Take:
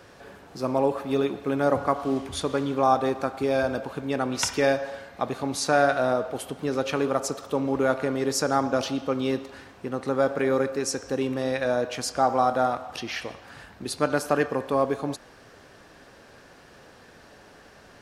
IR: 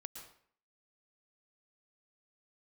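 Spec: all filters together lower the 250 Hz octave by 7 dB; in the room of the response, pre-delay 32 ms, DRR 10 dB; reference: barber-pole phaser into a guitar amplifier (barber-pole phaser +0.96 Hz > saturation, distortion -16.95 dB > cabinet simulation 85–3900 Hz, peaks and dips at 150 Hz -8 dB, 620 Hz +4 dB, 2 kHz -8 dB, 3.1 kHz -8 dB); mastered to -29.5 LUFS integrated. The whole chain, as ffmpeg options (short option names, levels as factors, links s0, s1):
-filter_complex "[0:a]equalizer=f=250:t=o:g=-7.5,asplit=2[s0][s1];[1:a]atrim=start_sample=2205,adelay=32[s2];[s1][s2]afir=irnorm=-1:irlink=0,volume=0.531[s3];[s0][s3]amix=inputs=2:normalize=0,asplit=2[s4][s5];[s5]afreqshift=0.96[s6];[s4][s6]amix=inputs=2:normalize=1,asoftclip=threshold=0.0944,highpass=85,equalizer=f=150:t=q:w=4:g=-8,equalizer=f=620:t=q:w=4:g=4,equalizer=f=2000:t=q:w=4:g=-8,equalizer=f=3100:t=q:w=4:g=-8,lowpass=f=3900:w=0.5412,lowpass=f=3900:w=1.3066,volume=1.26"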